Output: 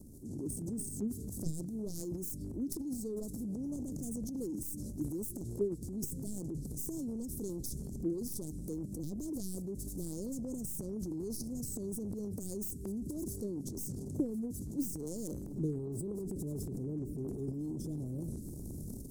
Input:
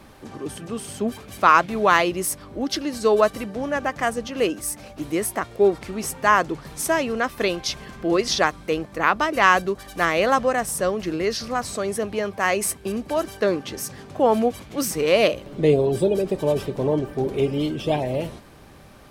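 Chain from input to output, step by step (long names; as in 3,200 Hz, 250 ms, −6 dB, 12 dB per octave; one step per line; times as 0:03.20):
stylus tracing distortion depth 0.13 ms
inverse Chebyshev band-stop filter 1,100–2,300 Hz, stop band 80 dB
automatic gain control gain up to 10.5 dB
transient designer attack −4 dB, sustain +11 dB
downward compressor 16 to 1, threshold −32 dBFS, peak gain reduction 24 dB
noise gate −31 dBFS, range −13 dB
level +9 dB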